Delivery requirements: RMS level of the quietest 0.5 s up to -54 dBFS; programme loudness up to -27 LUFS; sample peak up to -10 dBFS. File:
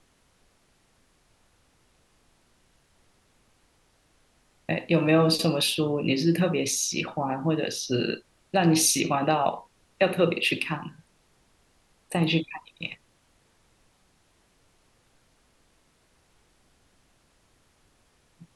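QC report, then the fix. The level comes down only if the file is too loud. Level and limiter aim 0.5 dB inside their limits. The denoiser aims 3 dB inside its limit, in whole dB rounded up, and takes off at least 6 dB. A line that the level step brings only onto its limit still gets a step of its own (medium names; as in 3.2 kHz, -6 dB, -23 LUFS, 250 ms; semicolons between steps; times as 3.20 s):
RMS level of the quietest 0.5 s -65 dBFS: pass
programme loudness -25.0 LUFS: fail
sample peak -8.0 dBFS: fail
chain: trim -2.5 dB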